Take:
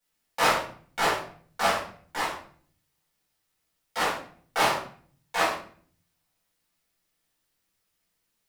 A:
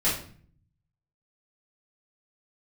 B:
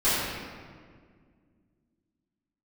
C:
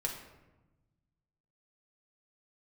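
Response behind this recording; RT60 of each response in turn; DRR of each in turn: A; 0.50, 1.9, 1.1 seconds; −10.5, −15.5, −1.0 decibels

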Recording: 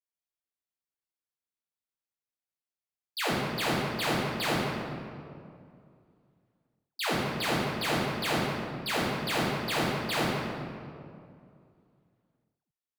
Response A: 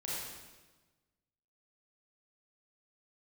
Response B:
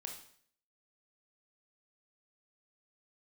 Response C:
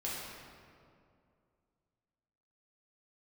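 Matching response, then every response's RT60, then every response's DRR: C; 1.3, 0.60, 2.4 seconds; −7.5, 2.0, −7.0 decibels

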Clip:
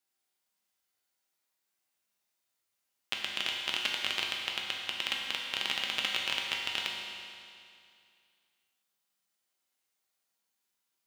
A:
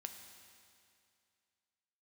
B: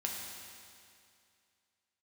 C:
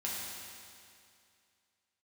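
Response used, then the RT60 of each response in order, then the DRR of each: B; 2.4, 2.4, 2.4 seconds; 5.0, −1.5, −6.5 decibels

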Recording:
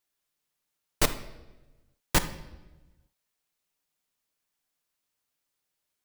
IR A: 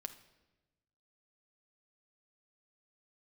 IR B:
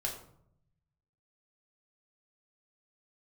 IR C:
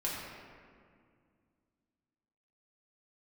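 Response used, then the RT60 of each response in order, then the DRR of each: A; 1.1, 0.70, 2.1 seconds; 8.0, −2.0, −6.0 decibels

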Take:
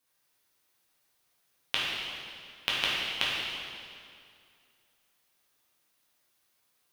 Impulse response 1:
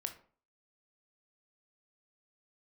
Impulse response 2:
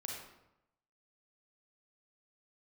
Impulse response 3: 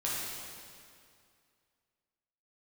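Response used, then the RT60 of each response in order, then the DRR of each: 3; 0.45, 0.85, 2.3 seconds; 6.0, −1.5, −7.5 decibels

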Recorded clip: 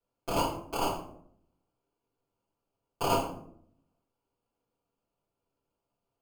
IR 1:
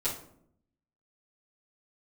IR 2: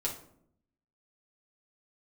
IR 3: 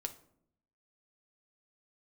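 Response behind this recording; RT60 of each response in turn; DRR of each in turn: 1; 0.70, 0.70, 0.70 seconds; −12.0, −3.5, 6.5 decibels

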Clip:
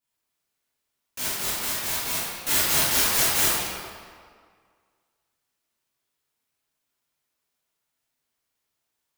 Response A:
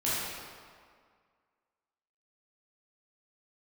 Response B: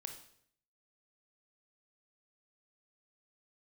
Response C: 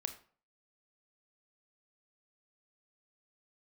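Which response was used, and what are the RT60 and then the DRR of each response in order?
A; 2.0, 0.65, 0.45 seconds; −10.5, 5.0, 7.5 decibels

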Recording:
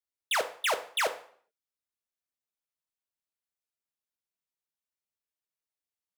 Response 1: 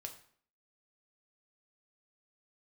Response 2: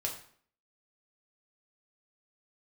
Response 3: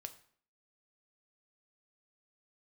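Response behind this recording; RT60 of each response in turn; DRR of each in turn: 3; 0.55, 0.55, 0.55 seconds; 3.0, −1.5, 7.5 decibels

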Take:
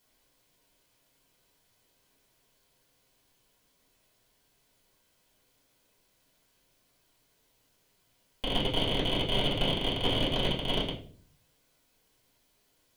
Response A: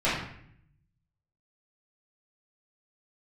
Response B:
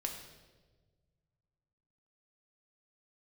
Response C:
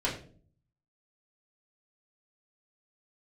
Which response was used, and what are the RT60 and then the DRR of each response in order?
C; 0.65, 1.4, 0.45 seconds; −12.0, 1.5, −6.0 decibels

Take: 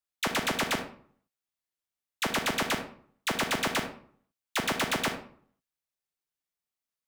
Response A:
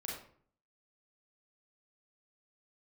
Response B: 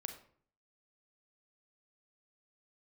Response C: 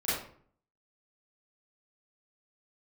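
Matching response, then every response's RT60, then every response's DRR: B; 0.55, 0.55, 0.55 seconds; −4.0, 5.5, −13.0 decibels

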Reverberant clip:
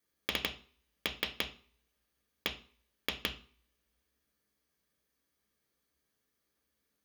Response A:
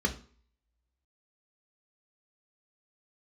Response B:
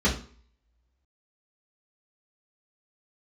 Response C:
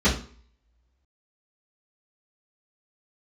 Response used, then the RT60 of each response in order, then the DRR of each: A; 0.45, 0.45, 0.45 seconds; 3.5, −6.5, −11.0 decibels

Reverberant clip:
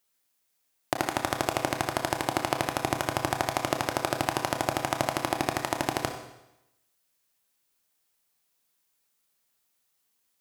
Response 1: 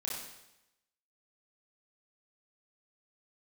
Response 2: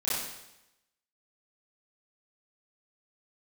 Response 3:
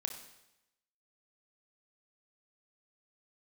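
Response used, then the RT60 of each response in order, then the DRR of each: 3; 0.90, 0.90, 0.90 seconds; −5.5, −12.0, 4.5 decibels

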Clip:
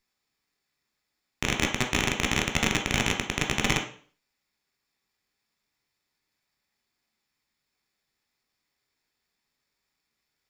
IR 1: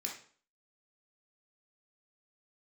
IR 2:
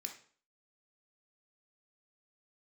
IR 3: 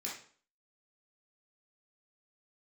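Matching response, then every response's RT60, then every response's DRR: 2; 0.45, 0.45, 0.45 seconds; −1.5, 2.5, −5.5 decibels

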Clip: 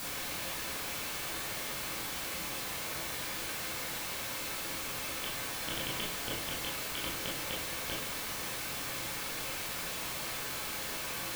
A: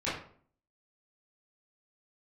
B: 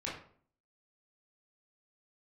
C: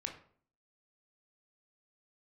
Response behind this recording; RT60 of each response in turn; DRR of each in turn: B; 0.50, 0.50, 0.50 seconds; −12.0, −6.5, 2.5 decibels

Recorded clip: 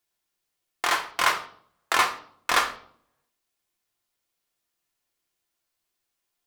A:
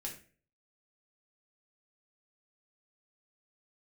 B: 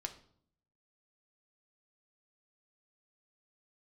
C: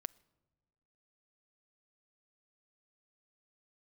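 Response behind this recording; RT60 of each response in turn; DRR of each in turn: B; 0.40 s, 0.60 s, non-exponential decay; −2.0, 4.0, 19.5 decibels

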